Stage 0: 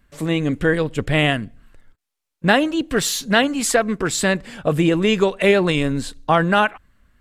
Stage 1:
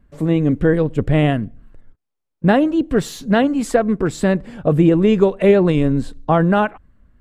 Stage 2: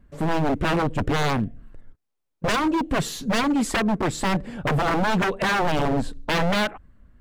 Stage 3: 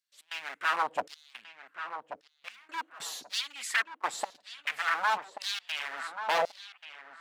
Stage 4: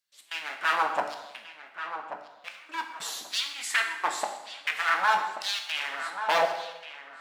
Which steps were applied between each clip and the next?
tilt shelving filter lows +8.5 dB, about 1,200 Hz; level −3 dB
wave folding −16.5 dBFS
gate pattern "xx.xxxxxxxx.." 145 BPM −24 dB; auto-filter high-pass saw down 0.93 Hz 590–5,000 Hz; feedback echo with a low-pass in the loop 1,134 ms, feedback 22%, low-pass 2,500 Hz, level −9.5 dB; level −6.5 dB
dense smooth reverb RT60 1 s, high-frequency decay 0.85×, DRR 3.5 dB; level +2.5 dB

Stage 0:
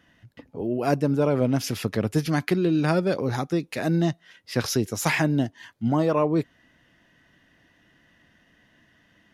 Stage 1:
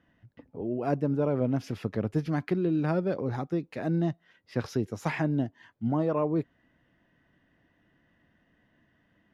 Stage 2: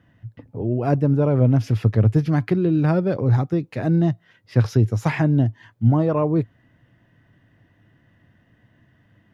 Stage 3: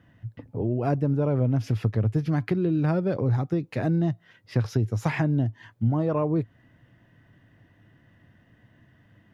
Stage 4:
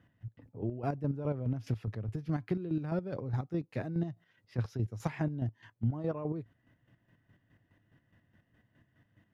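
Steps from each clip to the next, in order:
low-pass filter 1,200 Hz 6 dB per octave; level −4.5 dB
parametric band 110 Hz +14.5 dB 0.67 octaves; level +6 dB
downward compressor 2.5 to 1, threshold −23 dBFS, peak gain reduction 8.5 dB
square-wave tremolo 4.8 Hz, depth 60%, duty 35%; level −7 dB

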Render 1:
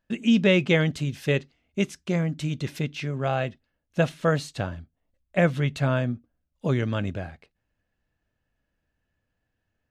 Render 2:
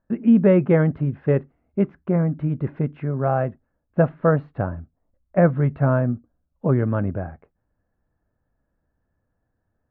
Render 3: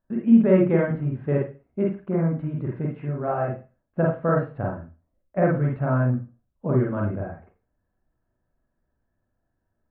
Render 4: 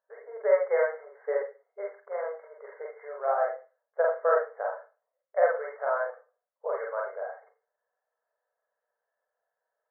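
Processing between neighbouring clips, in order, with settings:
low-pass filter 1,400 Hz 24 dB per octave; level +5 dB
convolution reverb, pre-delay 39 ms, DRR −2.5 dB; level −6.5 dB
linear-phase brick-wall band-pass 420–2,200 Hz

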